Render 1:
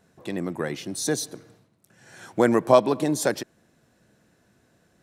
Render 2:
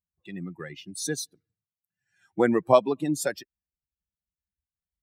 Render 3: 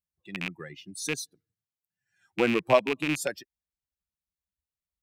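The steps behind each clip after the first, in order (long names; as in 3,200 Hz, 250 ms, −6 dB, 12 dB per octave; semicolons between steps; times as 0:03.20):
spectral dynamics exaggerated over time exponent 2
loose part that buzzes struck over −35 dBFS, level −15 dBFS; level −3 dB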